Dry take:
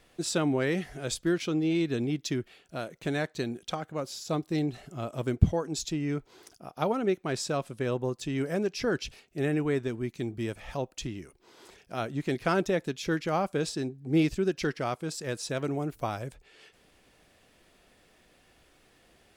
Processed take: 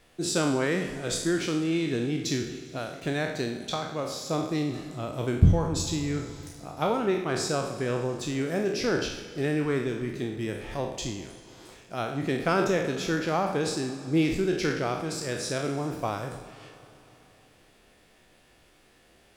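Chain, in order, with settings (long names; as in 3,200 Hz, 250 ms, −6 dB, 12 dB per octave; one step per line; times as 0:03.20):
peak hold with a decay on every bin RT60 0.66 s
four-comb reverb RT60 3.2 s, combs from 33 ms, DRR 11.5 dB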